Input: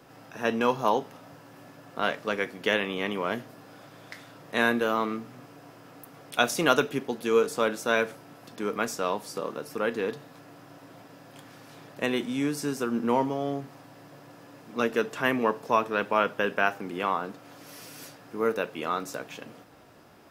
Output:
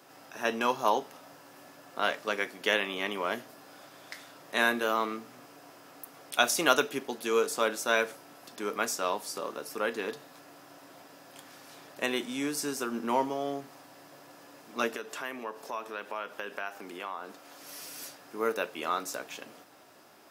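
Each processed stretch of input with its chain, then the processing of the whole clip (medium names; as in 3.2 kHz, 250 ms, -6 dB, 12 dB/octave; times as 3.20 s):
14.96–17.63 s: high-pass 200 Hz 6 dB/octave + compression 2.5:1, threshold -35 dBFS
whole clip: high-pass 190 Hz 6 dB/octave; tone controls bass -7 dB, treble +5 dB; band-stop 480 Hz, Q 12; trim -1 dB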